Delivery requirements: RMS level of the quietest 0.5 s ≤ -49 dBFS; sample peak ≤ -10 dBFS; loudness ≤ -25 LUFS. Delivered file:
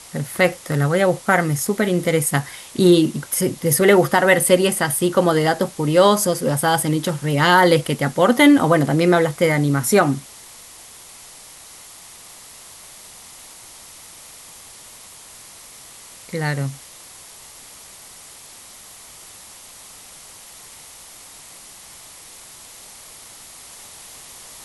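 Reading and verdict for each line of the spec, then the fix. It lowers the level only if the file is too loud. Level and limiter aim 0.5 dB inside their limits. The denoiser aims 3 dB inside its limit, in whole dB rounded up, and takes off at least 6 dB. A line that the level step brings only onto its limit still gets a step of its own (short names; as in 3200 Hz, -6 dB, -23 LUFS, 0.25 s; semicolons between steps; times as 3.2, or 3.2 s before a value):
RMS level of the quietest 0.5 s -42 dBFS: fail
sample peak -2.0 dBFS: fail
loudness -17.5 LUFS: fail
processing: gain -8 dB; limiter -10.5 dBFS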